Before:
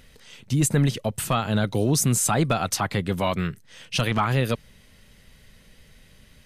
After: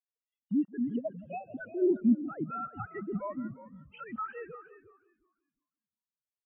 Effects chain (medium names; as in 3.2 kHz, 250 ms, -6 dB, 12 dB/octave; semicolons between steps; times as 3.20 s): formants replaced by sine waves; time-frequency box 1.23–1.61 s, 790–2200 Hz -29 dB; dynamic bell 1.5 kHz, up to +7 dB, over -38 dBFS, Q 1.9; peak limiter -20 dBFS, peak gain reduction 14.5 dB; tape echo 171 ms, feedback 56%, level -7 dB, low-pass 2.6 kHz; tremolo saw down 1.1 Hz, depth 35%; frequency-shifting echo 357 ms, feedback 49%, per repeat -64 Hz, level -6 dB; spectral contrast expander 2.5:1